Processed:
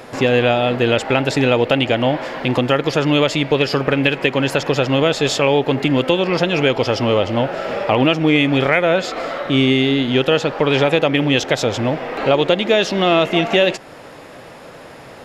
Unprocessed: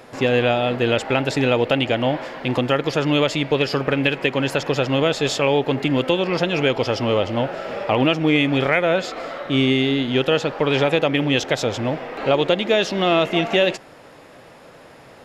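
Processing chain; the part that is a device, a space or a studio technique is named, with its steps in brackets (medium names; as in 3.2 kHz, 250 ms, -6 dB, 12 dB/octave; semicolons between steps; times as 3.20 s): parallel compression (in parallel at -1.5 dB: compression, threshold -28 dBFS, peak gain reduction 14.5 dB); on the sum: trim +1.5 dB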